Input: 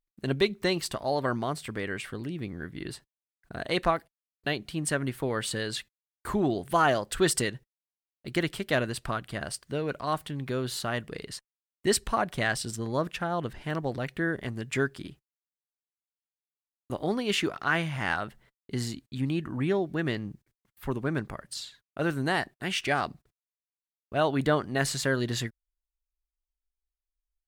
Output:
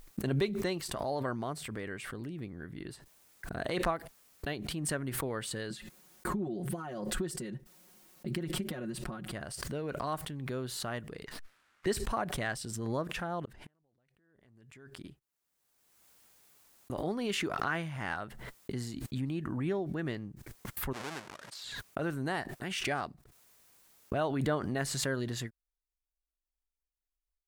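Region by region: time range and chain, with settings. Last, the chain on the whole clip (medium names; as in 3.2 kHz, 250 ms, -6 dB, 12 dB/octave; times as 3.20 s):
5.70–9.32 s: compression 12:1, threshold -36 dBFS + peaking EQ 230 Hz +10 dB 1.9 oct + comb 5.5 ms, depth 92%
11.26–11.86 s: level-controlled noise filter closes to 2.9 kHz, open at -39 dBFS + resonant high-pass 1.4 kHz, resonance Q 2.2 + sliding maximum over 5 samples
13.45–15.04 s: compression, threshold -29 dBFS + inverted gate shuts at -31 dBFS, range -36 dB
20.93–21.64 s: square wave that keeps the level + high-pass 1.3 kHz 6 dB/octave + distance through air 54 m
whole clip: de-esser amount 50%; peaking EQ 3.3 kHz -4 dB 1.7 oct; swell ahead of each attack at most 32 dB/s; trim -6.5 dB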